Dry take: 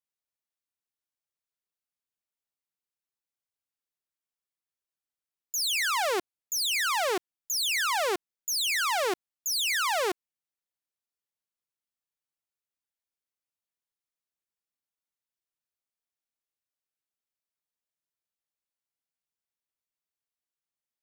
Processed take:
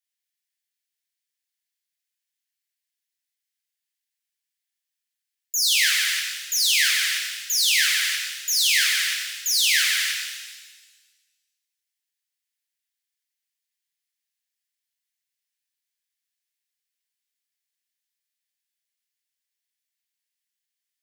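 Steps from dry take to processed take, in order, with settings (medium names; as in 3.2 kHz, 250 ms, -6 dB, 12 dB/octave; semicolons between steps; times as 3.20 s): elliptic high-pass 1.7 kHz, stop band 50 dB; pitch-shifted reverb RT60 1.3 s, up +7 st, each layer -8 dB, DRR -1 dB; trim +5.5 dB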